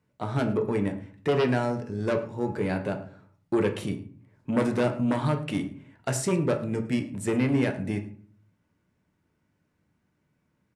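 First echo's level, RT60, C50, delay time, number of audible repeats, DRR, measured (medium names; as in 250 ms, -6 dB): -19.5 dB, 0.50 s, 11.0 dB, 107 ms, 1, 4.5 dB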